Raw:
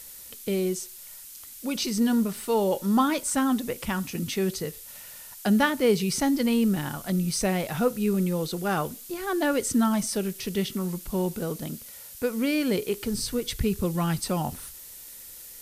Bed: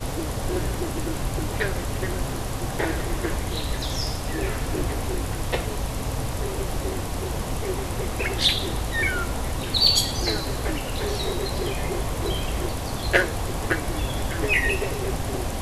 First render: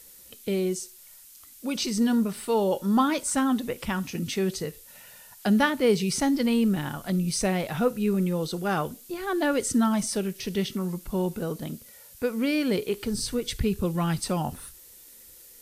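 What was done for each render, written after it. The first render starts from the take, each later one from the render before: noise print and reduce 6 dB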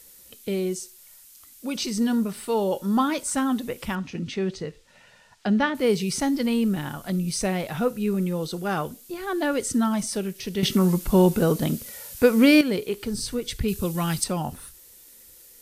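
3.95–5.75 s: distance through air 120 m; 10.63–12.61 s: gain +10 dB; 13.68–14.24 s: treble shelf 3.1 kHz +10 dB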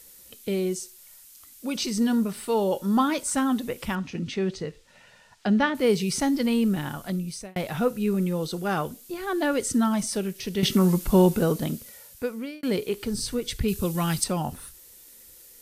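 7.00–7.56 s: fade out; 11.14–12.63 s: fade out linear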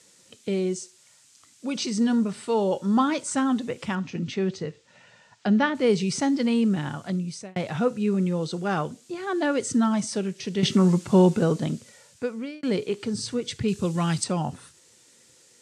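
elliptic band-pass 110–7700 Hz, stop band 50 dB; bass shelf 210 Hz +4 dB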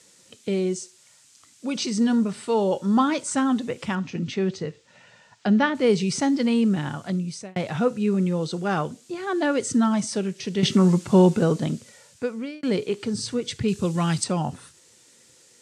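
trim +1.5 dB

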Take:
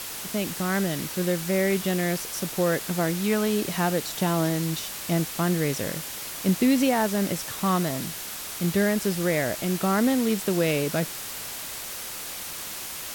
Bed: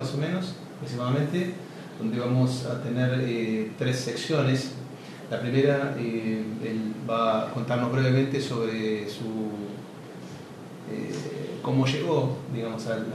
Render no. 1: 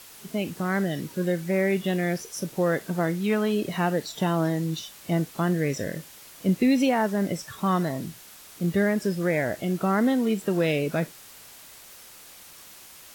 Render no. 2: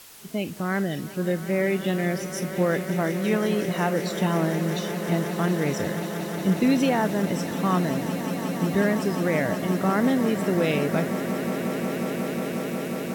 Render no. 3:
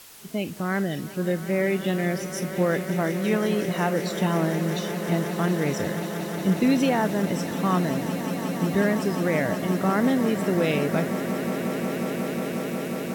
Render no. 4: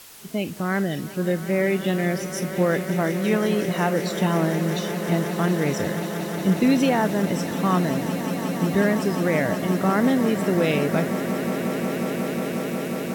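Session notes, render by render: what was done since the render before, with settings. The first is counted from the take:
noise print and reduce 12 dB
echo with a slow build-up 180 ms, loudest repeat 8, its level -14 dB
no audible change
trim +2 dB

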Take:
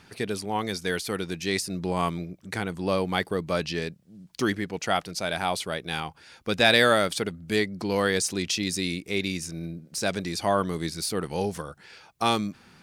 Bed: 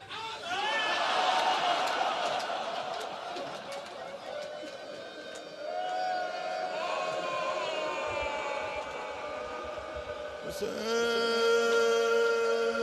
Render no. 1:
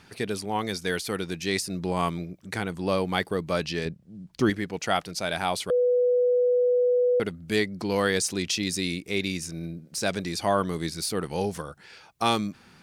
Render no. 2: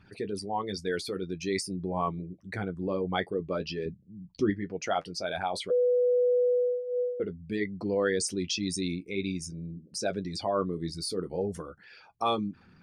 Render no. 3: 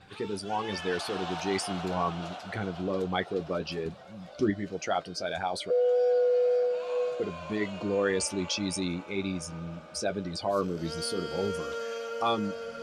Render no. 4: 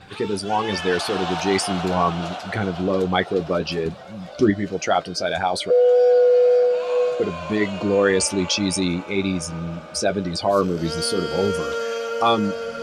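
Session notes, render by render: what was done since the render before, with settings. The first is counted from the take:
3.85–4.50 s: tilt EQ -2 dB/octave; 5.70–7.20 s: bleep 493 Hz -18.5 dBFS
resonances exaggerated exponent 2; flange 0.5 Hz, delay 9.8 ms, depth 1.6 ms, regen -37%
add bed -9.5 dB
trim +9.5 dB

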